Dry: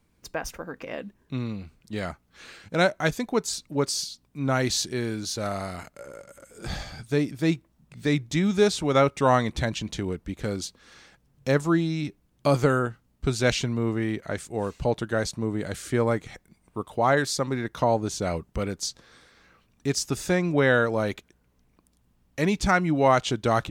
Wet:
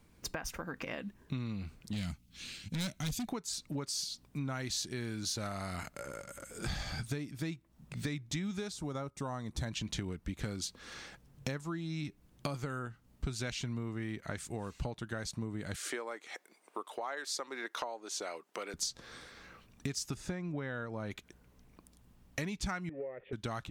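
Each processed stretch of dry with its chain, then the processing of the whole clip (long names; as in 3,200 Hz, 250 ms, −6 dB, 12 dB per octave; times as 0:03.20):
0:01.93–0:03.28: flat-topped bell 820 Hz −15.5 dB 2.7 octaves + hard clipping −31.5 dBFS
0:08.72–0:09.66: parametric band 2,500 Hz −12 dB 1.4 octaves + one half of a high-frequency compander encoder only
0:15.76–0:18.74: high-pass filter 370 Hz 24 dB per octave + high-shelf EQ 8,500 Hz −4 dB
0:20.14–0:21.11: low-pass filter 12,000 Hz + high-shelf EQ 2,000 Hz −9 dB
0:22.89–0:23.33: converter with a step at zero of −33.5 dBFS + formant resonators in series e + parametric band 410 Hz +15 dB 0.46 octaves
whole clip: downward compressor 10 to 1, threshold −36 dBFS; dynamic equaliser 490 Hz, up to −7 dB, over −53 dBFS, Q 0.94; level +3.5 dB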